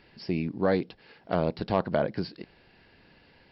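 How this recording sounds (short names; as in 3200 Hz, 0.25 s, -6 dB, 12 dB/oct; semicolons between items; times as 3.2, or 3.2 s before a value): noise floor -60 dBFS; spectral tilt -6.0 dB/oct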